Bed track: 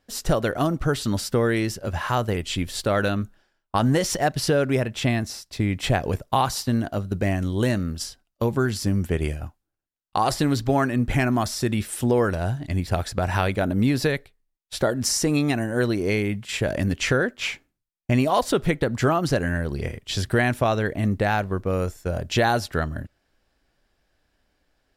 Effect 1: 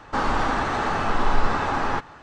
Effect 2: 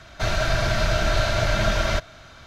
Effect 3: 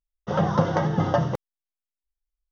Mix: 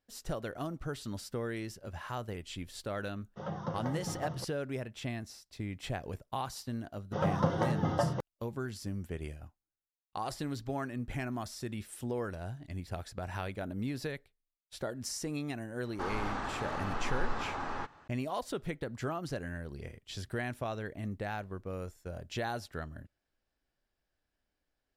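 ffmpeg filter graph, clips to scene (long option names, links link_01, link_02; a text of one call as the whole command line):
ffmpeg -i bed.wav -i cue0.wav -i cue1.wav -i cue2.wav -filter_complex "[3:a]asplit=2[link_01][link_02];[0:a]volume=-15.5dB[link_03];[link_01]atrim=end=2.51,asetpts=PTS-STARTPTS,volume=-16.5dB,afade=type=in:duration=0.004:curve=hsin,afade=type=out:start_time=2.506:duration=0.004:curve=hsin,adelay=136269S[link_04];[link_02]atrim=end=2.51,asetpts=PTS-STARTPTS,volume=-8dB,afade=type=in:duration=0.004:curve=hsin,afade=type=out:start_time=2.506:duration=0.004:curve=hsin,adelay=6850[link_05];[1:a]atrim=end=2.22,asetpts=PTS-STARTPTS,volume=-13.5dB,afade=type=in:duration=0.004:curve=hsin,afade=type=out:start_time=2.216:duration=0.004:curve=hsin,adelay=15860[link_06];[link_03][link_04][link_05][link_06]amix=inputs=4:normalize=0" out.wav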